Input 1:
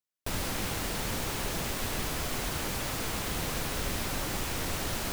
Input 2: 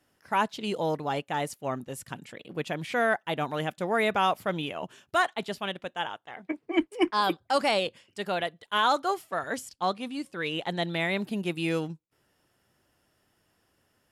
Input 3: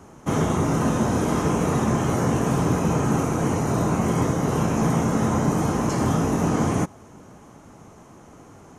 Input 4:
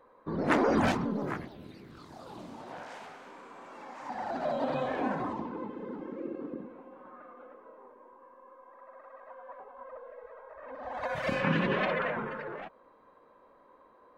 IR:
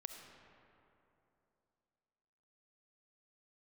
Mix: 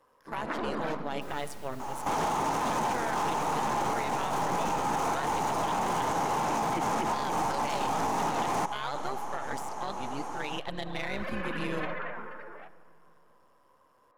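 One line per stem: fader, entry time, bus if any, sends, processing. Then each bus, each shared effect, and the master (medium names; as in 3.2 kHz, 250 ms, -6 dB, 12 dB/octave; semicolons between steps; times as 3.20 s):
-19.5 dB, 0.95 s, no send, none
-1.5 dB, 0.00 s, send -4 dB, partial rectifier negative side -7 dB; AM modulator 140 Hz, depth 75%
-16.0 dB, 1.80 s, no send, overdrive pedal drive 30 dB, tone 7.9 kHz, clips at -8.5 dBFS; peaking EQ 860 Hz +13.5 dB 0.52 oct
-15.0 dB, 0.00 s, send -3.5 dB, steep high-pass 150 Hz; peaking EQ 1.3 kHz +8 dB 2.6 oct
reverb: on, RT60 3.0 s, pre-delay 25 ms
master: peak limiter -21.5 dBFS, peak gain reduction 10.5 dB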